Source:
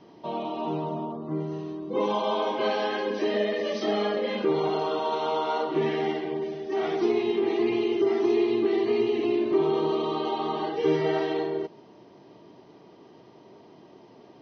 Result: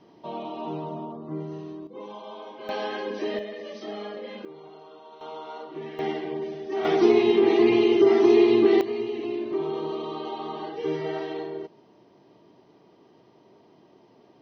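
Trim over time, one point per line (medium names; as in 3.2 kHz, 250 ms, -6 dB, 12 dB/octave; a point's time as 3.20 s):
-3 dB
from 1.87 s -14 dB
from 2.69 s -3 dB
from 3.39 s -9.5 dB
from 4.45 s -20 dB
from 5.21 s -11.5 dB
from 5.99 s -1 dB
from 6.85 s +6 dB
from 8.81 s -5 dB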